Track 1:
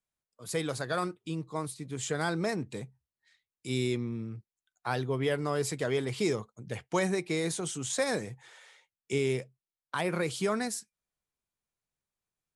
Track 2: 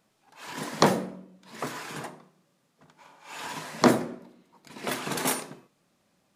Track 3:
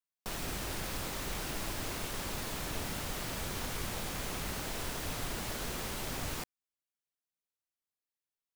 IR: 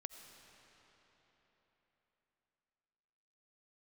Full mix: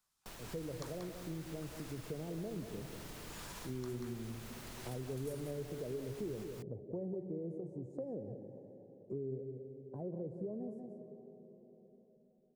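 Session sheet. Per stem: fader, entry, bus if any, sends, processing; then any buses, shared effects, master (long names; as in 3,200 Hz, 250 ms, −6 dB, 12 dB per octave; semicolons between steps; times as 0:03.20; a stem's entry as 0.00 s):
+1.0 dB, 0.00 s, bus A, send −5.5 dB, echo send −15 dB, inverse Chebyshev low-pass filter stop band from 1,200 Hz, stop band 40 dB
−4.5 dB, 0.00 s, bus A, no send, echo send −23 dB, high-pass filter 1,100 Hz 24 dB per octave
−5.0 dB, 0.00 s, no bus, no send, echo send −10 dB, automatic ducking −9 dB, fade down 0.30 s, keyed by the first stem
bus A: 0.0 dB, parametric band 2,200 Hz −12 dB 1.8 octaves; downward compressor 2 to 1, threshold −50 dBFS, peak gain reduction 14 dB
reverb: on, RT60 4.2 s, pre-delay 45 ms
echo: single-tap delay 185 ms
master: downward compressor 2 to 1, threshold −43 dBFS, peak gain reduction 8 dB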